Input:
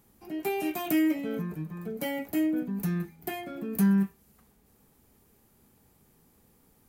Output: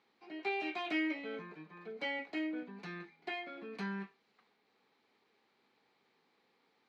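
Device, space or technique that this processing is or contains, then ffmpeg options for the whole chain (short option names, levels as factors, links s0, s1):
phone earpiece: -af "highpass=470,equalizer=f=600:t=q:w=4:g=-4,equalizer=f=2200:t=q:w=4:g=6,equalizer=f=4100:t=q:w=4:g=7,lowpass=f=4300:w=0.5412,lowpass=f=4300:w=1.3066,volume=0.668"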